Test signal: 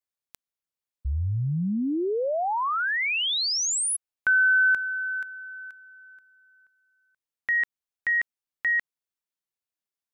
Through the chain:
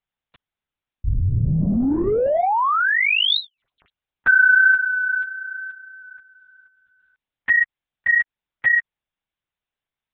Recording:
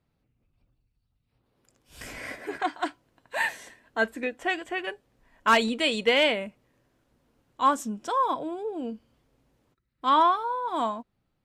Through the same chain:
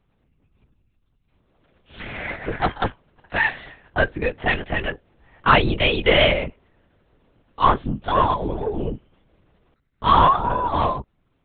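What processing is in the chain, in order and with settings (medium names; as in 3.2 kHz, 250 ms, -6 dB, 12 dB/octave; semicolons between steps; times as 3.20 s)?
in parallel at -3.5 dB: saturation -26.5 dBFS; on the sum: LPC vocoder at 8 kHz whisper; trim +4 dB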